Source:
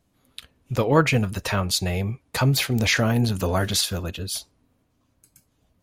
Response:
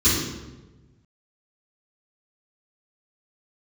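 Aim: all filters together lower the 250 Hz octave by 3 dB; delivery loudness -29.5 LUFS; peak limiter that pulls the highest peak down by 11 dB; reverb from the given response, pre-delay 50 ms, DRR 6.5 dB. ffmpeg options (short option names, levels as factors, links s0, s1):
-filter_complex "[0:a]equalizer=f=250:t=o:g=-4,alimiter=limit=0.133:level=0:latency=1,asplit=2[s0][s1];[1:a]atrim=start_sample=2205,adelay=50[s2];[s1][s2]afir=irnorm=-1:irlink=0,volume=0.0668[s3];[s0][s3]amix=inputs=2:normalize=0,volume=0.473"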